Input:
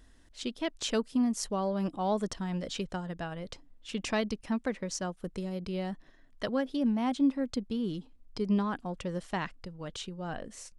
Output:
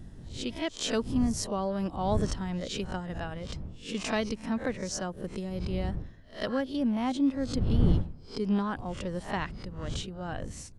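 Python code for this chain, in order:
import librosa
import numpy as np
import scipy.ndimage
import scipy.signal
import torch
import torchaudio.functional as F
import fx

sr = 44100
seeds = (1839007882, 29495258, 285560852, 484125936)

y = fx.spec_swells(x, sr, rise_s=0.31)
y = fx.dmg_wind(y, sr, seeds[0], corner_hz=120.0, level_db=-35.0)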